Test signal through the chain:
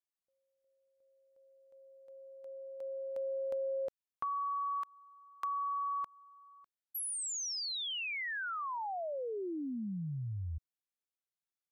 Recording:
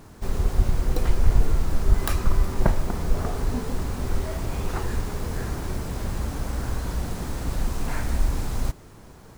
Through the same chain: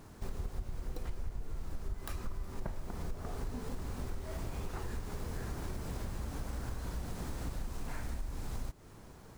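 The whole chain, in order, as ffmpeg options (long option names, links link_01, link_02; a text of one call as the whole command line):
ffmpeg -i in.wav -af "acompressor=threshold=-28dB:ratio=6,volume=-6.5dB" out.wav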